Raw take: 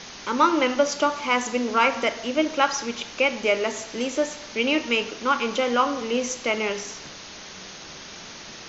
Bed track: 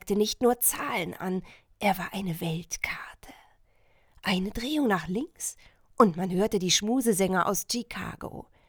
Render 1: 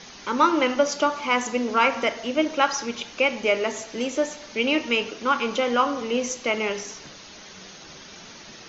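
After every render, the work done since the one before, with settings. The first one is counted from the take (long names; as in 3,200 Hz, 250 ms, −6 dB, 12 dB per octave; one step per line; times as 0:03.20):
broadband denoise 6 dB, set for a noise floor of −41 dBFS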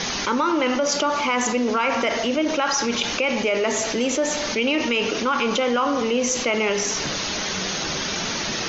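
brickwall limiter −14 dBFS, peak gain reduction 9 dB
envelope flattener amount 70%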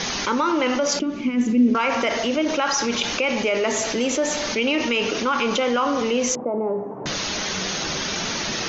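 0:00.99–0:01.75: drawn EQ curve 110 Hz 0 dB, 260 Hz +9 dB, 900 Hz −23 dB, 2,400 Hz −9 dB, 4,100 Hz −15 dB
0:06.35–0:07.06: elliptic band-pass filter 120–890 Hz, stop band 60 dB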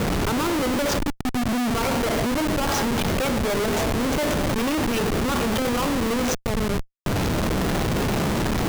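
comparator with hysteresis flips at −21 dBFS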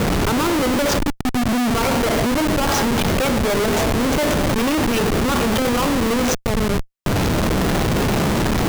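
level +4.5 dB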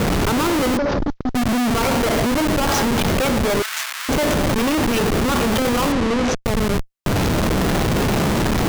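0:00.77–0:01.35: variable-slope delta modulation 32 kbit/s
0:03.62–0:04.09: high-pass filter 1,300 Hz 24 dB per octave
0:05.92–0:06.45: high-frequency loss of the air 79 metres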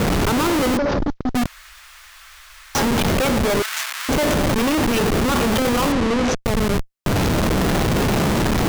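0:01.46–0:02.75: fill with room tone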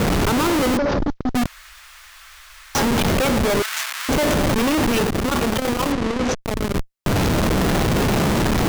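0:05.03–0:06.77: saturating transformer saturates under 140 Hz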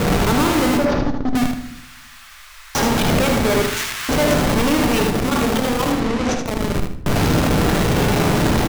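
on a send: repeating echo 77 ms, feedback 26%, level −5.5 dB
on the sum: rectangular room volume 170 cubic metres, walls mixed, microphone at 0.39 metres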